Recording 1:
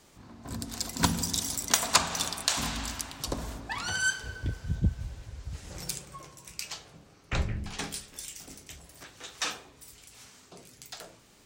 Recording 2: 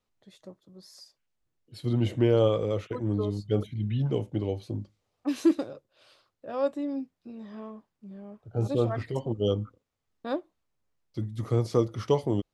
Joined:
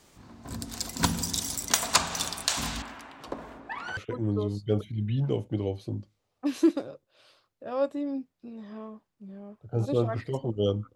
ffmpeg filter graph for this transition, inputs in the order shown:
-filter_complex "[0:a]asettb=1/sr,asplit=3[s0][s1][s2];[s0]atrim=end=2.824[s3];[s1]atrim=start=2.82:end=3.97,asetpts=PTS-STARTPTS,afade=t=in:d=0.004:c=qsin,afade=t=out:st=1.146:d=0.004:c=qsin,acrossover=split=220 2600:gain=0.158 1 0.0891[s4][s5][s6];[s4][s5][s6]amix=inputs=3:normalize=0[s7];[s2]atrim=start=3.966[s8];[s3][s7]acrossfade=d=0.004:c1=hsin:c2=qsin[s9];[s9][s8]acrossfade=d=0.004:c1=qsin:c2=hsin,apad=whole_dur=10.95,atrim=end=10.95,atrim=end=3.972[s10];[1:a]atrim=start=2.788:end=9.77[s11];[s10][s11]acrossfade=d=0.004:c1=hsin:c2=hsin"

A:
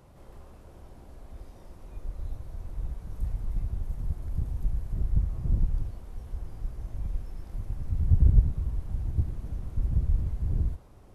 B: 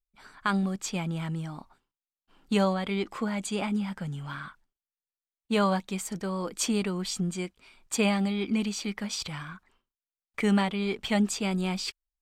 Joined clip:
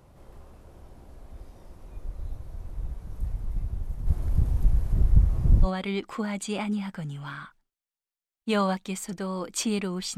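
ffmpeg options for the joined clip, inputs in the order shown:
-filter_complex "[0:a]asplit=3[s0][s1][s2];[s0]afade=t=out:st=4.06:d=0.02[s3];[s1]acontrast=81,afade=t=in:st=4.06:d=0.02,afade=t=out:st=5.68:d=0.02[s4];[s2]afade=t=in:st=5.68:d=0.02[s5];[s3][s4][s5]amix=inputs=3:normalize=0,apad=whole_dur=10.17,atrim=end=10.17,atrim=end=5.68,asetpts=PTS-STARTPTS[s6];[1:a]atrim=start=2.65:end=7.2,asetpts=PTS-STARTPTS[s7];[s6][s7]acrossfade=d=0.06:c1=tri:c2=tri"

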